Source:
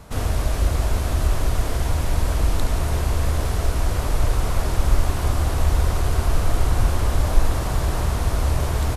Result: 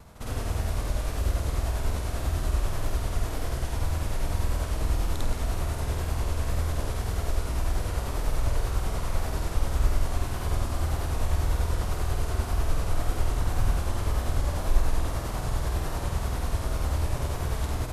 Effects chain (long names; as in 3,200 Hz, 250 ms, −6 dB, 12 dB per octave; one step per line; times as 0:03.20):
pitch vibrato 3.7 Hz 58 cents
time stretch by overlap-add 2×, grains 197 ms
level −5.5 dB